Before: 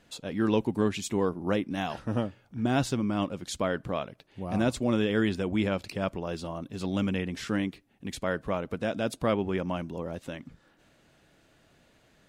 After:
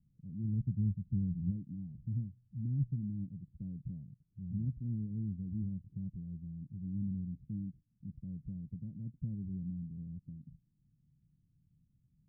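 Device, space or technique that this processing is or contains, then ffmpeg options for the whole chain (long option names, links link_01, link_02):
the neighbour's flat through the wall: -filter_complex "[0:a]lowpass=frequency=170:width=0.5412,lowpass=frequency=170:width=1.3066,equalizer=frequency=150:width_type=o:width=1:gain=6,asplit=3[link_01][link_02][link_03];[link_01]afade=type=out:start_time=0.43:duration=0.02[link_04];[link_02]asubboost=boost=6.5:cutoff=220,afade=type=in:start_time=0.43:duration=0.02,afade=type=out:start_time=1.5:duration=0.02[link_05];[link_03]afade=type=in:start_time=1.5:duration=0.02[link_06];[link_04][link_05][link_06]amix=inputs=3:normalize=0,volume=-5.5dB"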